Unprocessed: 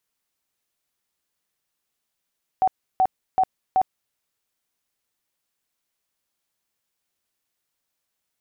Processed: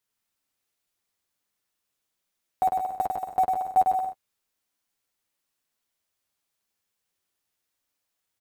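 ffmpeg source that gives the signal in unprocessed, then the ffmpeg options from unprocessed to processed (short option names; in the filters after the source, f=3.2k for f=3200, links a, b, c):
-f lavfi -i "aevalsrc='0.188*sin(2*PI*754*mod(t,0.38))*lt(mod(t,0.38),42/754)':d=1.52:s=44100"
-filter_complex "[0:a]asplit=2[a][b];[b]acrusher=bits=4:mix=0:aa=0.000001,volume=-10dB[c];[a][c]amix=inputs=2:normalize=0,flanger=delay=9.6:depth=1.7:regen=-14:speed=0.61:shape=sinusoidal,aecho=1:1:100|175|231.2|273.4|305.1:0.631|0.398|0.251|0.158|0.1"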